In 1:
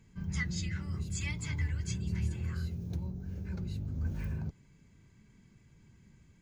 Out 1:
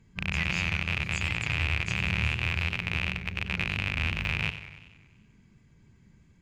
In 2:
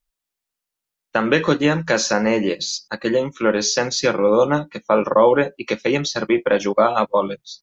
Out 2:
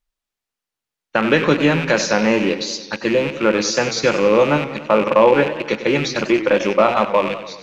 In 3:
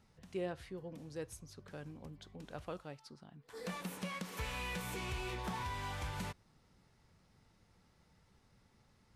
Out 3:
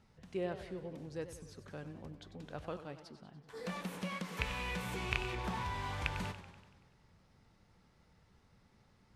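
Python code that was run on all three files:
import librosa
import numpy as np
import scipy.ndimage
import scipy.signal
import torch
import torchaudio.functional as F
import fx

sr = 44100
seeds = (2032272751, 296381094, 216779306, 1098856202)

y = fx.rattle_buzz(x, sr, strikes_db=-35.0, level_db=-16.0)
y = fx.high_shelf(y, sr, hz=7400.0, db=-9.0)
y = fx.echo_warbled(y, sr, ms=95, feedback_pct=61, rate_hz=2.8, cents=132, wet_db=-12)
y = F.gain(torch.from_numpy(y), 1.5).numpy()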